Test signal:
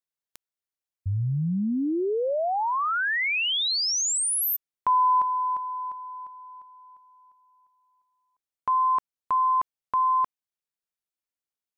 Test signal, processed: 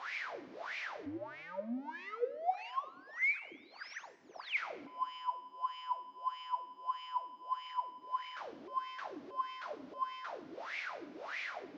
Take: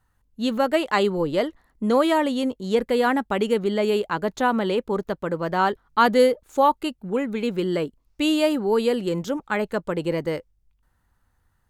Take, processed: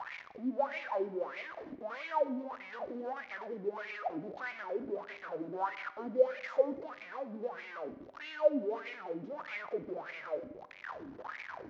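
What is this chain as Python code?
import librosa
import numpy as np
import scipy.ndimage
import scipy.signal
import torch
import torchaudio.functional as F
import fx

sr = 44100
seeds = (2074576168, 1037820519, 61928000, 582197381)

y = fx.delta_mod(x, sr, bps=32000, step_db=-16.0)
y = scipy.signal.sosfilt(scipy.signal.butter(2, 53.0, 'highpass', fs=sr, output='sos'), y)
y = fx.dynamic_eq(y, sr, hz=630.0, q=3.1, threshold_db=-39.0, ratio=5.0, max_db=7)
y = fx.wah_lfo(y, sr, hz=1.6, low_hz=270.0, high_hz=2300.0, q=9.2)
y = fx.rev_schroeder(y, sr, rt60_s=0.95, comb_ms=31, drr_db=14.0)
y = y * librosa.db_to_amplitude(-6.0)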